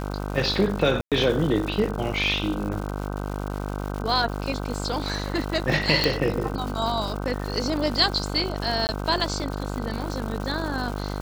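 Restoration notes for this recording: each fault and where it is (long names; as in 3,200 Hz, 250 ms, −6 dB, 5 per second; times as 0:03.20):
mains buzz 50 Hz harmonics 31 −30 dBFS
surface crackle 260 per second −31 dBFS
0:01.01–0:01.12: drop-out 107 ms
0:06.04: click −6 dBFS
0:08.87–0:08.89: drop-out 19 ms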